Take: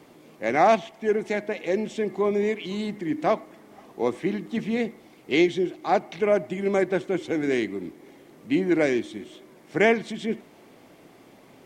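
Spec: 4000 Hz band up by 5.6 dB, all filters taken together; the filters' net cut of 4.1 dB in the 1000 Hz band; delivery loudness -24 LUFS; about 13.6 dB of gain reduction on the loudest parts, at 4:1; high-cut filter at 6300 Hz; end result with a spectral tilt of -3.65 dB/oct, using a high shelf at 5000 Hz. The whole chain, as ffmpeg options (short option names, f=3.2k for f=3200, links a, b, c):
-af "lowpass=6.3k,equalizer=f=1k:t=o:g=-7,equalizer=f=4k:t=o:g=6,highshelf=f=5k:g=5.5,acompressor=threshold=-32dB:ratio=4,volume=11.5dB"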